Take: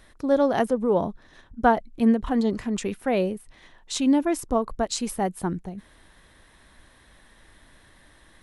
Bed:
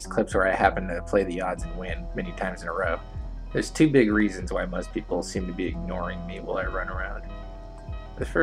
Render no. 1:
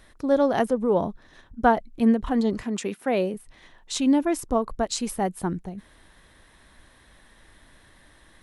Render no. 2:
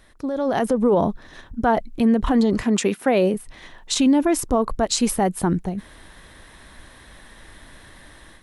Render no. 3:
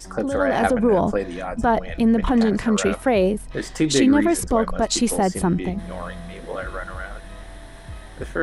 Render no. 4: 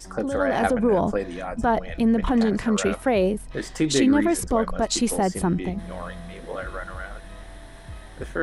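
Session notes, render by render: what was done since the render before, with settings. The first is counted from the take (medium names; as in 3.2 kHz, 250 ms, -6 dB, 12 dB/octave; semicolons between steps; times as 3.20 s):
2.63–3.34 s: high-pass 180 Hz
peak limiter -19 dBFS, peak gain reduction 11 dB; level rider gain up to 9 dB
add bed -1.5 dB
trim -2.5 dB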